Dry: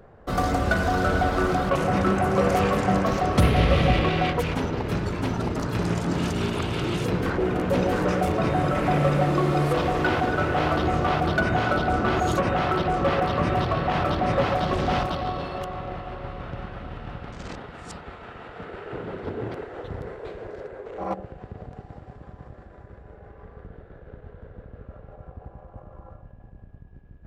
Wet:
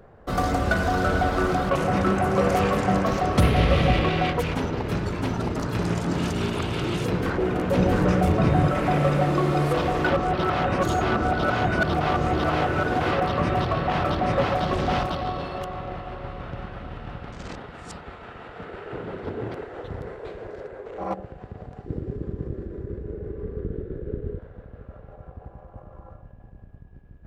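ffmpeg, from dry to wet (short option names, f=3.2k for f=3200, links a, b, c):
-filter_complex "[0:a]asettb=1/sr,asplit=3[a][b][c];[a]atrim=end=7.784[d];[b]atrim=start=7.78:end=8.68,asetpts=PTS-STARTPTS,afade=t=in:d=0.004:c=qsin,afade=t=out:st=0.896:d=0.004:c=qsin,bass=f=250:g=7,treble=f=4k:g=-1[e];[c]atrim=start=8.676[f];[d][e]acrossfade=d=0.004:c1=hsin:c2=qsin[g];[g][f]acrossfade=d=0.004:c1=qsin:c2=hsin,asettb=1/sr,asplit=3[h][i][j];[h]atrim=end=21.864[k];[i]atrim=start=21.86:end=24.39,asetpts=PTS-STARTPTS,afade=t=in:d=0.004:c=qsin,afade=t=out:st=2.526:d=0.004:c=qsin,lowshelf=f=540:t=q:w=3:g=11[l];[j]atrim=start=24.386[m];[k][l]acrossfade=d=0.004:c1=hsin:c2=qsin[n];[n][m]acrossfade=d=0.004:c1=qsin:c2=hsin,asplit=3[o][p][q];[o]atrim=end=10.102[r];[p]atrim=start=10.098:end=13.112,asetpts=PTS-STARTPTS,areverse[s];[q]atrim=start=13.108[t];[r][s]acrossfade=d=0.004:c1=hsin:c2=hsin[u];[u][t]acrossfade=d=0.004:c1=hsin:c2=hsin"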